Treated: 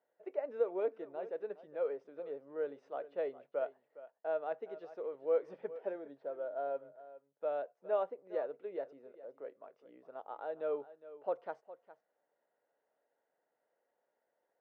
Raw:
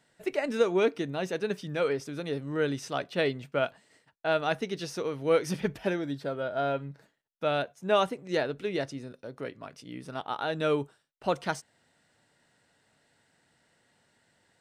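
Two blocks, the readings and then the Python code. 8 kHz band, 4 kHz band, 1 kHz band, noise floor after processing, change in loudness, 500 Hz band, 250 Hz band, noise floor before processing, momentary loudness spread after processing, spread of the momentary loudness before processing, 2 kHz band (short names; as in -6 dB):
under -30 dB, under -25 dB, -11.5 dB, -84 dBFS, -9.0 dB, -7.5 dB, -18.5 dB, -70 dBFS, 17 LU, 13 LU, -19.5 dB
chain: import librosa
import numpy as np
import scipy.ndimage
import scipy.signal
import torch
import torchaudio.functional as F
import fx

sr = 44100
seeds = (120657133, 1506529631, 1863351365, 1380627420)

p1 = fx.ladder_bandpass(x, sr, hz=620.0, resonance_pct=45)
y = p1 + fx.echo_single(p1, sr, ms=411, db=-16.0, dry=0)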